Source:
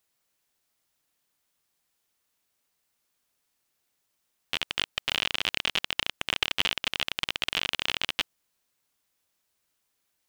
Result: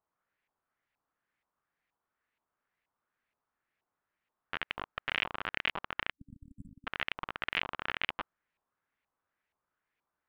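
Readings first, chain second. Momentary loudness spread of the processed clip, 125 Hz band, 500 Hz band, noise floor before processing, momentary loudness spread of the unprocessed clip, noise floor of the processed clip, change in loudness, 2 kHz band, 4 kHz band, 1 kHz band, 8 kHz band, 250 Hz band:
13 LU, −5.0 dB, −5.0 dB, −77 dBFS, 4 LU, below −85 dBFS, −8.0 dB, −4.5 dB, −13.5 dB, −1.5 dB, below −25 dB, −5.0 dB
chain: auto-filter low-pass saw up 2.1 Hz 950–2,300 Hz
time-frequency box erased 0:06.11–0:06.87, 290–7,600 Hz
level −5 dB

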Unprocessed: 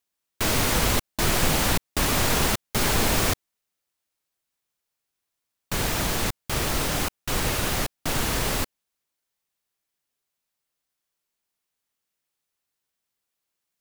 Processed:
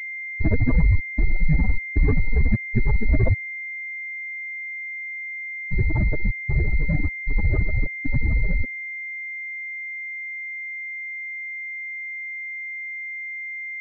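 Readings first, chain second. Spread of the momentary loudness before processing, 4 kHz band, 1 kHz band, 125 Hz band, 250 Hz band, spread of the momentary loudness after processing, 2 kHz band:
6 LU, below −30 dB, −15.5 dB, +7.5 dB, +1.5 dB, 8 LU, +5.5 dB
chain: expanding power law on the bin magnitudes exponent 3.8
switching amplifier with a slow clock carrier 2,100 Hz
level +7.5 dB

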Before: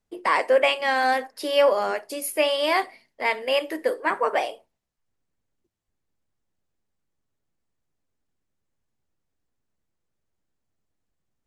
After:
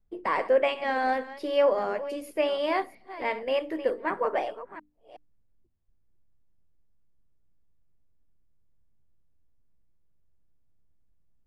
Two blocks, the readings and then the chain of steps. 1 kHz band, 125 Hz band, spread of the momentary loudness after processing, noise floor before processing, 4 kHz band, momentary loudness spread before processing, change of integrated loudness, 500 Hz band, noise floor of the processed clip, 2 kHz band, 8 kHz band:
−5.0 dB, can't be measured, 10 LU, −80 dBFS, −10.5 dB, 8 LU, −4.5 dB, −3.0 dB, −65 dBFS, −7.5 dB, below −15 dB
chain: delay that plays each chunk backwards 369 ms, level −14 dB
RIAA equalisation playback
mains-hum notches 50/100/150/200/250/300 Hz
level −5.5 dB

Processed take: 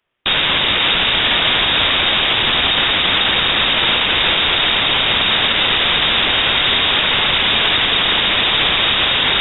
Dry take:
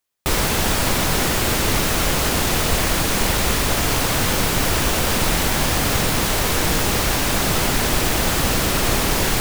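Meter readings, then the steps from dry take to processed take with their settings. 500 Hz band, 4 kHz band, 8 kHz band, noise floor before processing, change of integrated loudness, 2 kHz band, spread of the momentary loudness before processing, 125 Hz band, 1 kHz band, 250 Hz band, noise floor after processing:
−1.0 dB, +12.5 dB, below −40 dB, −21 dBFS, +6.0 dB, +8.0 dB, 0 LU, −7.0 dB, +3.0 dB, −4.0 dB, −17 dBFS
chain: low-shelf EQ 180 Hz −7.5 dB
voice inversion scrambler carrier 3,700 Hz
boost into a limiter +17 dB
level −5 dB

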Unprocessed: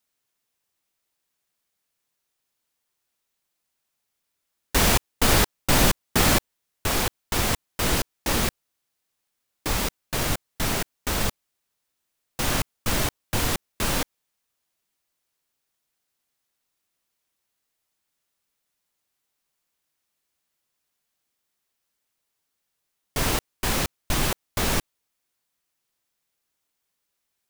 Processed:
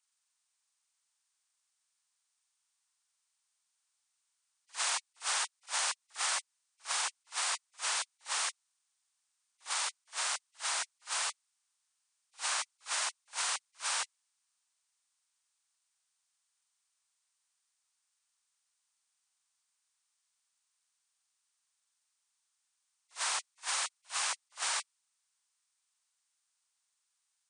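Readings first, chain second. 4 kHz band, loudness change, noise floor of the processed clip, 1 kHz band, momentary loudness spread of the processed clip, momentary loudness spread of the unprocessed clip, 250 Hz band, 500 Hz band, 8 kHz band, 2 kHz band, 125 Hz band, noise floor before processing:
−8.0 dB, −9.5 dB, −82 dBFS, −10.0 dB, 4 LU, 8 LU, below −40 dB, −23.0 dB, −5.5 dB, −9.0 dB, below −40 dB, −79 dBFS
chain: hearing-aid frequency compression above 1,900 Hz 1.5 to 1
high-pass filter 920 Hz 24 dB per octave
parametric band 2,400 Hz −4.5 dB 2.5 octaves
downward compressor, threshold −29 dBFS, peak gain reduction 7 dB
backwards echo 53 ms −17.5 dB
level that may rise only so fast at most 320 dB per second

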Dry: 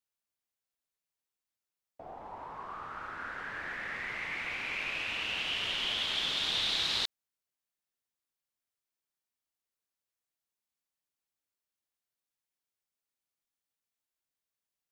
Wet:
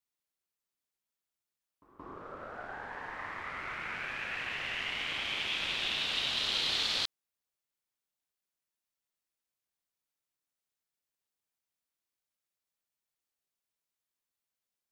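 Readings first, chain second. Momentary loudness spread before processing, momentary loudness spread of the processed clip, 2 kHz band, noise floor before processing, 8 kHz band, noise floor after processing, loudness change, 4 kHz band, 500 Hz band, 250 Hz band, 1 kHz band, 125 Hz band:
15 LU, 15 LU, −0.5 dB, below −85 dBFS, 0.0 dB, below −85 dBFS, −0.5 dB, −0.5 dB, +0.5 dB, +0.5 dB, −0.5 dB, 0.0 dB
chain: ring modulation 380 Hz
echo ahead of the sound 175 ms −16 dB
level +2.5 dB

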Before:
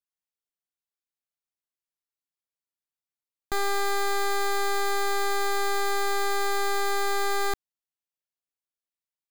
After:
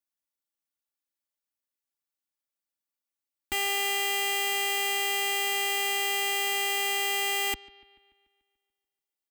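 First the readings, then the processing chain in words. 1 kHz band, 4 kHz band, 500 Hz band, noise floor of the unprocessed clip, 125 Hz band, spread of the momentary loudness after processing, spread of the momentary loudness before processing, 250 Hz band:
−4.5 dB, +6.0 dB, −7.0 dB, below −85 dBFS, can't be measured, 2 LU, 2 LU, −6.5 dB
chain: phase distortion by the signal itself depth 0.2 ms
high-pass filter 49 Hz 12 dB per octave
high-shelf EQ 11,000 Hz +5.5 dB
comb filter 3.5 ms, depth 96%
bucket-brigade delay 145 ms, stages 4,096, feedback 56%, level −21 dB
level −3 dB

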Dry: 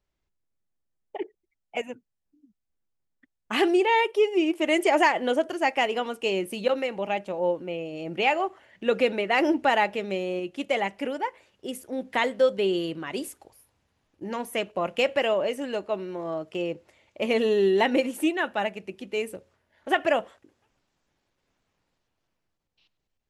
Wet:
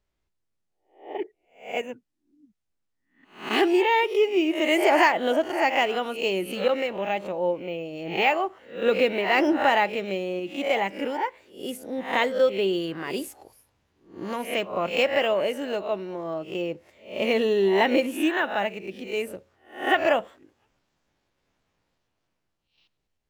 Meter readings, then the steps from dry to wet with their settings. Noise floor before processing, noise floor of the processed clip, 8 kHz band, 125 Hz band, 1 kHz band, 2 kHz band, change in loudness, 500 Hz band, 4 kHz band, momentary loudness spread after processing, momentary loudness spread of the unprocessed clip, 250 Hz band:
−81 dBFS, −78 dBFS, −0.5 dB, +0.5 dB, +1.5 dB, +2.0 dB, +1.5 dB, +1.0 dB, +2.0 dB, 14 LU, 14 LU, +1.0 dB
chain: peak hold with a rise ahead of every peak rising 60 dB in 0.41 s
linearly interpolated sample-rate reduction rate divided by 2×

